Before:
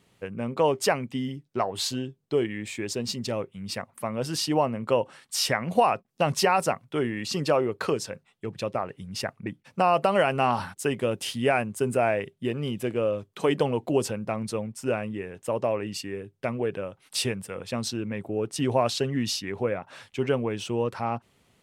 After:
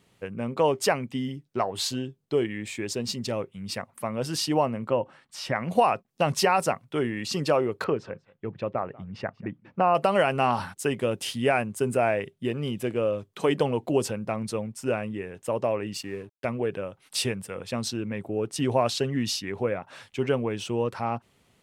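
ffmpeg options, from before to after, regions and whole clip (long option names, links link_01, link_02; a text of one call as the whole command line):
ffmpeg -i in.wav -filter_complex "[0:a]asettb=1/sr,asplit=3[link_01][link_02][link_03];[link_01]atrim=end=4.884[link_04];[link_02]atrim=start=4.88:end=5.56,asetpts=PTS-STARTPTS,afade=type=in:duration=0.004:curve=qsin,afade=type=out:start_time=0.676:duration=0.004:curve=qsin,lowpass=frequency=1400:poles=1,bandreject=frequency=440:width=5.6[link_05];[link_03]atrim=start=5.556[link_06];[link_04][link_05]acrossfade=duration=0.004:curve1=hsin:curve2=qsin[link_07];[link_07][link_06]acrossfade=duration=0.004:curve1=qsin:curve2=hsin,asettb=1/sr,asplit=3[link_08][link_09][link_10];[link_08]atrim=end=7.844[link_11];[link_09]atrim=start=7.84:end=9.95,asetpts=PTS-STARTPTS,afade=type=in:duration=0.004:curve=qsin,afade=type=out:start_time=2.106:duration=0.004:curve=qsin,lowpass=2000,aecho=1:1:189:0.075,atrim=end_sample=93051[link_12];[link_10]atrim=start=9.946[link_13];[link_11][link_12]acrossfade=duration=0.004:curve1=hsin:curve2=qsin[link_14];[link_14][link_13]acrossfade=duration=0.004:curve1=qsin:curve2=hsin,asettb=1/sr,asplit=3[link_15][link_16][link_17];[link_15]atrim=end=15.944[link_18];[link_16]atrim=start=15.94:end=16.45,asetpts=PTS-STARTPTS,afade=type=in:duration=0.004:curve=qsin,afade=type=out:start_time=0.506:duration=0.004:curve=qsin,highpass=58,aeval=exprs='sgn(val(0))*max(abs(val(0))-0.002,0)':channel_layout=same[link_19];[link_17]atrim=start=16.446[link_20];[link_18][link_19]acrossfade=duration=0.004:curve1=hsin:curve2=qsin[link_21];[link_21][link_20]acrossfade=duration=0.004:curve1=qsin:curve2=hsin" out.wav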